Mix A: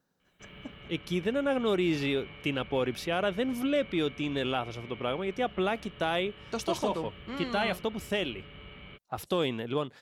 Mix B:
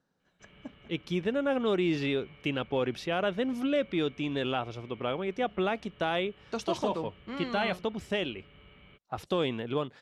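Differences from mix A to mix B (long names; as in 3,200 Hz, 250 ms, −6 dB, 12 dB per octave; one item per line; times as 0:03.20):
background −7.5 dB
master: add high-frequency loss of the air 61 metres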